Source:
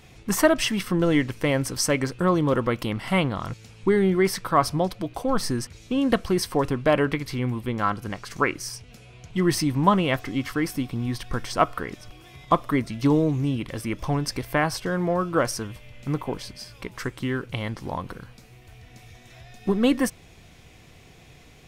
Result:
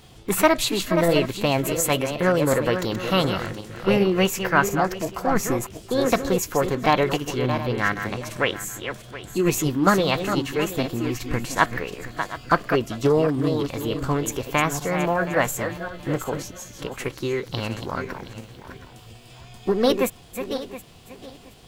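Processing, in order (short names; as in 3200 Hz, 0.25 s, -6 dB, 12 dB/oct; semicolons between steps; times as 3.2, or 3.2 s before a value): regenerating reverse delay 0.361 s, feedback 46%, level -8.5 dB; formant shift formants +5 st; gain +1 dB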